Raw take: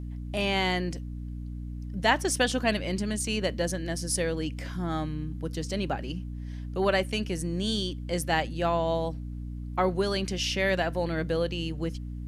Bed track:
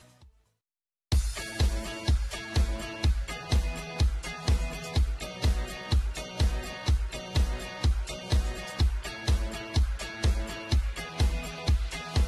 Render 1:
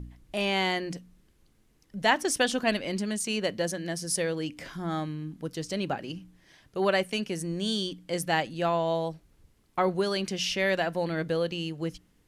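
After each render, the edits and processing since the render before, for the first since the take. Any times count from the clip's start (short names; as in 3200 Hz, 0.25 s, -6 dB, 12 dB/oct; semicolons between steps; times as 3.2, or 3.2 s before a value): de-hum 60 Hz, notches 5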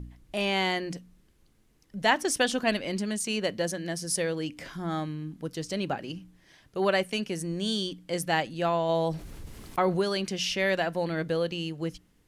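8.89–10.02 fast leveller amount 50%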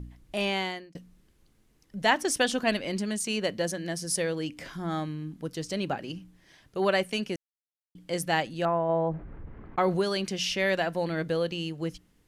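0.44–0.95 fade out; 7.36–7.95 mute; 8.65–9.78 LPF 1800 Hz 24 dB/oct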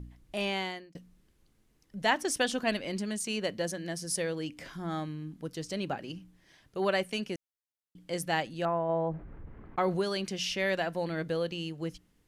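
gain -3.5 dB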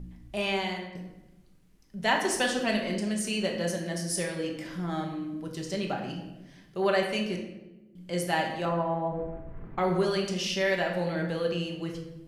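shoebox room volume 450 m³, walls mixed, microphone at 1.2 m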